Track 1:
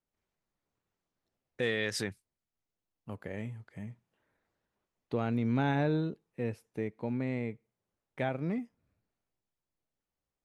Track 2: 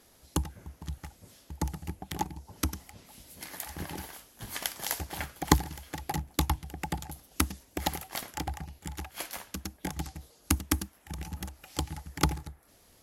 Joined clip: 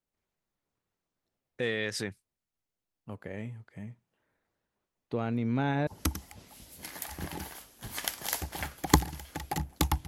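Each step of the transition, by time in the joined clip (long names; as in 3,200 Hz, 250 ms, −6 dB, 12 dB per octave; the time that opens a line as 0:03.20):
track 1
0:05.87: continue with track 2 from 0:02.45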